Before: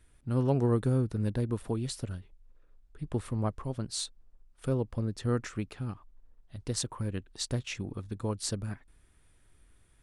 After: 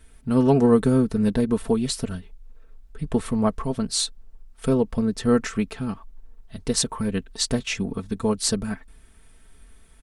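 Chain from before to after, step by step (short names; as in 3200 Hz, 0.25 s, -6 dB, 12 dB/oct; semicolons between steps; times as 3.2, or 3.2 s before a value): comb 4.5 ms, depth 70%; gain +9 dB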